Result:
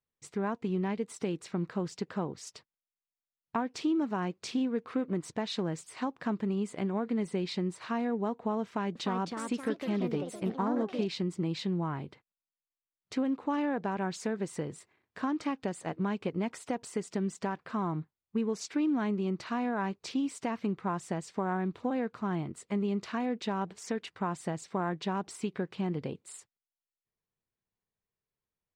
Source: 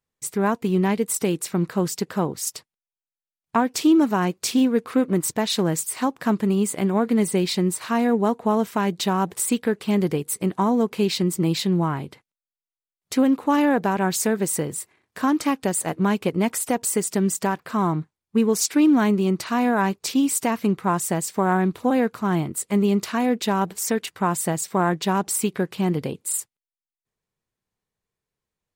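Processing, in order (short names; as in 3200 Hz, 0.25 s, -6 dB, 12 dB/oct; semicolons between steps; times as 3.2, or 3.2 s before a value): compressor 2:1, threshold -22 dBFS, peak gain reduction 5.5 dB; 8.63–11.11 echoes that change speed 0.323 s, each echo +3 st, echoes 3, each echo -6 dB; air absorption 120 m; gain -7.5 dB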